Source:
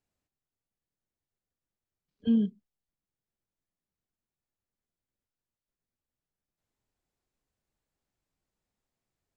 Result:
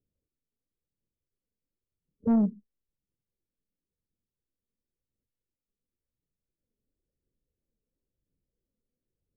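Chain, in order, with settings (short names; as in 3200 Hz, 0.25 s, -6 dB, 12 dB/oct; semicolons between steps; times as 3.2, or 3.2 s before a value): gate -49 dBFS, range -6 dB; Chebyshev low-pass 520 Hz, order 4; phaser 0.96 Hz, delay 4.9 ms, feedback 39%; soft clip -26.5 dBFS, distortion -14 dB; gain +8 dB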